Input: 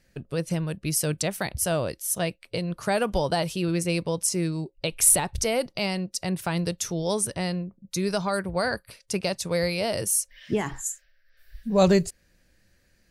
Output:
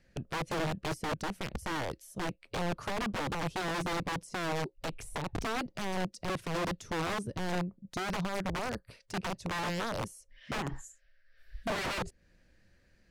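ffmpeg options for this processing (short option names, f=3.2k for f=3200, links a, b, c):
-filter_complex "[0:a]acrossover=split=490[a][b];[b]acompressor=threshold=-40dB:ratio=6[c];[a][c]amix=inputs=2:normalize=0,aeval=exprs='(mod(20*val(0)+1,2)-1)/20':c=same,aemphasis=mode=reproduction:type=50fm,volume=-1.5dB"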